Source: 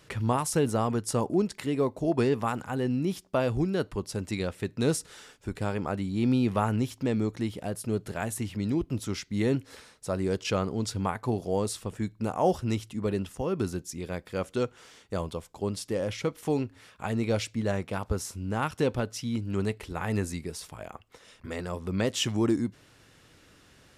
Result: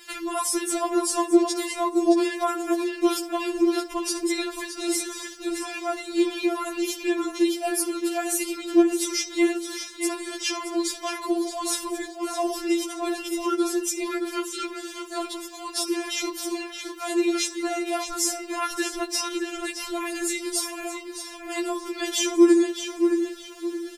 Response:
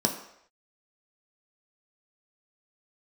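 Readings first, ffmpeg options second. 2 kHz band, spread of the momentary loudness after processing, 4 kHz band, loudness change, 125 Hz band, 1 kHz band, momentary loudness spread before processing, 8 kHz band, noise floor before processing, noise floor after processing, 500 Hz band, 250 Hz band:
+6.5 dB, 11 LU, +8.5 dB, +4.0 dB, under -35 dB, +4.0 dB, 9 LU, +11.0 dB, -58 dBFS, -40 dBFS, +3.5 dB, +5.5 dB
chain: -filter_complex "[0:a]highshelf=f=2.2k:g=9.5,alimiter=limit=-20dB:level=0:latency=1:release=40,acrusher=bits=11:mix=0:aa=0.000001,asplit=2[a][b];[b]adelay=620,lowpass=f=4.8k:p=1,volume=-6dB,asplit=2[c][d];[d]adelay=620,lowpass=f=4.8k:p=1,volume=0.36,asplit=2[e][f];[f]adelay=620,lowpass=f=4.8k:p=1,volume=0.36,asplit=2[g][h];[h]adelay=620,lowpass=f=4.8k:p=1,volume=0.36[i];[a][c][e][g][i]amix=inputs=5:normalize=0,asplit=2[j][k];[1:a]atrim=start_sample=2205,adelay=62[l];[k][l]afir=irnorm=-1:irlink=0,volume=-24.5dB[m];[j][m]amix=inputs=2:normalize=0,afftfilt=real='re*4*eq(mod(b,16),0)':imag='im*4*eq(mod(b,16),0)':win_size=2048:overlap=0.75,volume=7.5dB"

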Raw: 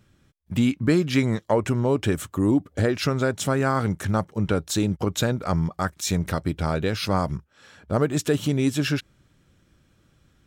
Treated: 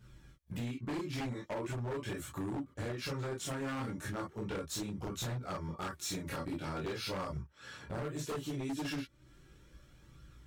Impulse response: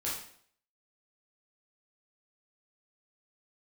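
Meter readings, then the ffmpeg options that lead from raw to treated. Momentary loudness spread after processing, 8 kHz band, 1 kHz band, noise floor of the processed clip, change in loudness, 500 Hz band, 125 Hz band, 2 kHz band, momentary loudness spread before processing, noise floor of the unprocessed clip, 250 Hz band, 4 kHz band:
4 LU, -11.5 dB, -13.5 dB, -62 dBFS, -15.5 dB, -15.5 dB, -15.5 dB, -13.5 dB, 4 LU, -63 dBFS, -16.0 dB, -11.5 dB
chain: -filter_complex "[1:a]atrim=start_sample=2205,atrim=end_sample=3087[a];[0:a][a]afir=irnorm=-1:irlink=0,acompressor=threshold=-37dB:ratio=3,flanger=delay=0.6:depth=3.2:regen=56:speed=0.39:shape=triangular,aeval=exprs='0.02*(abs(mod(val(0)/0.02+3,4)-2)-1)':c=same,volume=2dB"

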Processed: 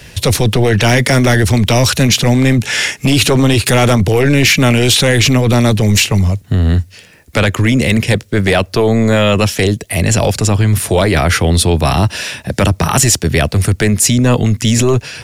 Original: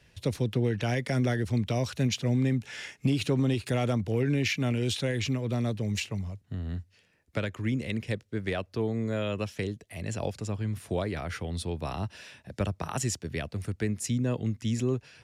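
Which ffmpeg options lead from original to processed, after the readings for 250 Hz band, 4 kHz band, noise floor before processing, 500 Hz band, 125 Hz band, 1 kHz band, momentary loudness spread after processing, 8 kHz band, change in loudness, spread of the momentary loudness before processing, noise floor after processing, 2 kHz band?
+16.5 dB, +22.5 dB, -65 dBFS, +18.0 dB, +17.5 dB, +21.0 dB, 5 LU, +24.0 dB, +18.5 dB, 9 LU, -41 dBFS, +21.5 dB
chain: -af "crystalizer=i=1:c=0,apsyclip=30dB,volume=-6dB"

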